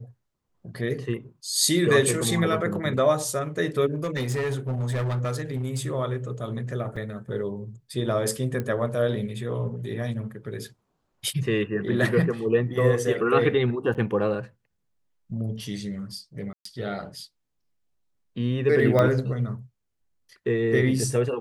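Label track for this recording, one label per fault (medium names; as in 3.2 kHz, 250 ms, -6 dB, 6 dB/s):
3.940000	5.870000	clipped -23 dBFS
6.960000	6.960000	dropout 4.4 ms
8.600000	8.600000	pop -17 dBFS
13.940000	13.950000	dropout 8.5 ms
16.530000	16.650000	dropout 124 ms
18.990000	18.990000	pop -11 dBFS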